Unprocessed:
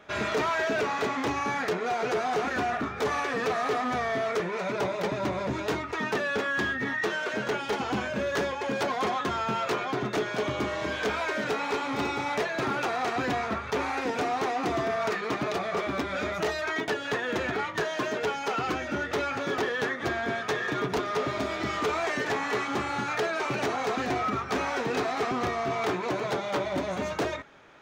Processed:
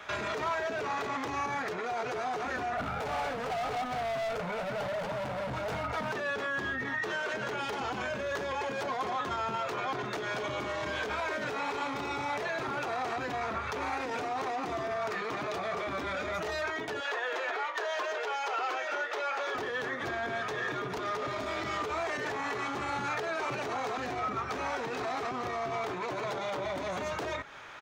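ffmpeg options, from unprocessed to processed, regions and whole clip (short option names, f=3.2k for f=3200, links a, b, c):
-filter_complex "[0:a]asettb=1/sr,asplit=3[a][b][c];[a]atrim=end=2.774[d];[b]atrim=start=2.77:end=6.12,asetpts=PTS-STARTPTS,afade=t=in:d=0.004:c=qsin,afade=t=out:st=3.346:d=0.004:c=qsin,tiltshelf=f=1.3k:g=6.5,aecho=1:1:1.4:1,atrim=end_sample=147735,asoftclip=type=hard:threshold=-28dB[e];[c]atrim=start=6.116[f];[d][e]acrossfade=d=0.004:c1=hsin:c2=qsin[g];[g][f]acrossfade=d=0.004:c1=qsin:c2=hsin,asettb=1/sr,asplit=3[h][i][j];[h]atrim=end=17.004[k];[i]atrim=start=17:end=19.55,asetpts=PTS-STARTPTS,afade=t=in:d=0.004:c=qsin,afade=t=out:st=2.546:d=0.004:c=qsin,highpass=f=470:w=0.5412,highpass=f=470:w=1.3066,equalizer=f=12k:t=o:w=1.1:g=-7.5[l];[j]atrim=start=19.546[m];[k][l]acrossfade=d=0.004:c1=hsin:c2=qsin[n];[n][m]acrossfade=d=0.004:c1=qsin:c2=hsin,acrossover=split=150|660[o][p][q];[o]acompressor=threshold=-47dB:ratio=4[r];[p]acompressor=threshold=-29dB:ratio=4[s];[q]acompressor=threshold=-43dB:ratio=4[t];[r][s][t]amix=inputs=3:normalize=0,alimiter=level_in=7dB:limit=-24dB:level=0:latency=1:release=13,volume=-7dB,firequalizer=gain_entry='entry(110,0);entry(200,-6);entry(1000,6)':delay=0.05:min_phase=1,volume=3dB"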